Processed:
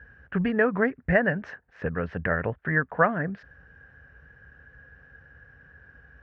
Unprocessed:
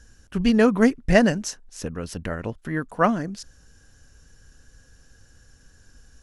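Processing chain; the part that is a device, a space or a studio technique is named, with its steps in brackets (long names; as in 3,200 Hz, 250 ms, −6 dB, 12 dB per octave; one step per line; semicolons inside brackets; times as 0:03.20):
bass amplifier (downward compressor 4 to 1, threshold −22 dBFS, peak gain reduction 10.5 dB; loudspeaker in its box 63–2,100 Hz, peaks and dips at 98 Hz −7 dB, 220 Hz −8 dB, 320 Hz −9 dB, 1,000 Hz −3 dB, 1,700 Hz +8 dB)
level +5 dB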